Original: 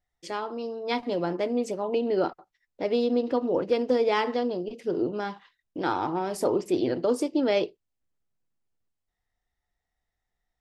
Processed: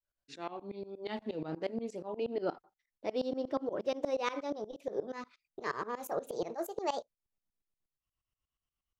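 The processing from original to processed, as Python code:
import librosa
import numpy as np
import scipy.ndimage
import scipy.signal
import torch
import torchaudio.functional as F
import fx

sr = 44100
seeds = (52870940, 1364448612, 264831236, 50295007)

y = fx.speed_glide(x, sr, from_pct=79, to_pct=157)
y = fx.tremolo_shape(y, sr, shape='saw_up', hz=8.4, depth_pct=95)
y = y * librosa.db_to_amplitude(-5.5)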